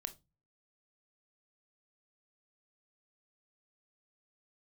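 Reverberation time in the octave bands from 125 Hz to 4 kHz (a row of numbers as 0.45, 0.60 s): 0.60, 0.45, 0.25, 0.20, 0.20, 0.20 s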